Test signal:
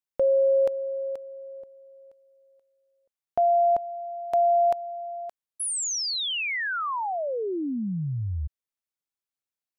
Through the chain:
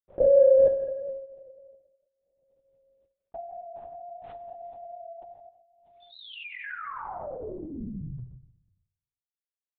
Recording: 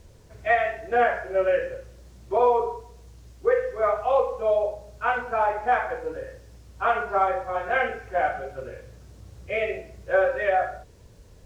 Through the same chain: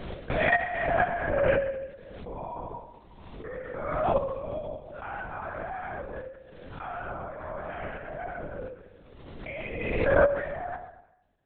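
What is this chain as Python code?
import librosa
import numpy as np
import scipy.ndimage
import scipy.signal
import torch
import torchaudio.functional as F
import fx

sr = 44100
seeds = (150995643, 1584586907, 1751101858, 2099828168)

y = fx.spec_steps(x, sr, hold_ms=100)
y = fx.gate_hold(y, sr, open_db=-43.0, close_db=-46.0, hold_ms=17.0, range_db=-34, attack_ms=0.75, release_ms=240.0)
y = fx.low_shelf(y, sr, hz=97.0, db=-10.0)
y = y + 0.67 * np.pad(y, (int(5.4 * sr / 1000.0), 0))[:len(y)]
y = fx.level_steps(y, sr, step_db=18)
y = fx.echo_tape(y, sr, ms=137, feedback_pct=26, wet_db=-12.5, lp_hz=2800.0, drive_db=11.0, wow_cents=31)
y = fx.rev_plate(y, sr, seeds[0], rt60_s=0.86, hf_ratio=1.0, predelay_ms=0, drr_db=3.5)
y = fx.lpc_vocoder(y, sr, seeds[1], excitation='whisper', order=10)
y = fx.pre_swell(y, sr, db_per_s=36.0)
y = y * 10.0 ** (-2.5 / 20.0)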